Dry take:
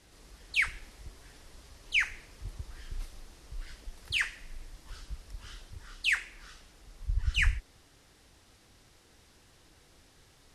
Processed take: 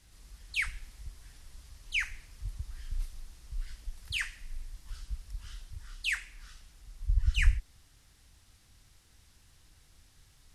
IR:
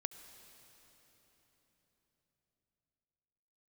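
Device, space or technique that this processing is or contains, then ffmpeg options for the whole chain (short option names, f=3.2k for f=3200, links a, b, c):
smiley-face EQ: -af "lowshelf=f=120:g=9,equalizer=f=430:t=o:w=1.8:g=-8.5,highshelf=f=7.3k:g=6.5,volume=-4dB"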